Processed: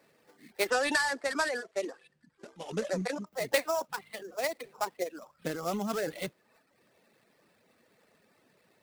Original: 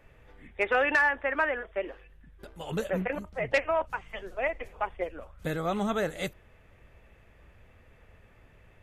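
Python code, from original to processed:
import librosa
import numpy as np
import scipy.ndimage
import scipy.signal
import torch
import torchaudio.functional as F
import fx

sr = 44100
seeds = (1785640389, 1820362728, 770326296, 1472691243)

y = scipy.signal.sosfilt(scipy.signal.butter(4, 190.0, 'highpass', fs=sr, output='sos'), x)
y = fx.transient(y, sr, attack_db=3, sustain_db=7)
y = fx.low_shelf(y, sr, hz=320.0, db=4.5)
y = fx.sample_hold(y, sr, seeds[0], rate_hz=6400.0, jitter_pct=20)
y = fx.lowpass(y, sr, hz=9700.0, slope=24, at=(0.7, 3.27))
y = fx.dereverb_blind(y, sr, rt60_s=0.73)
y = y * 10.0 ** (-4.5 / 20.0)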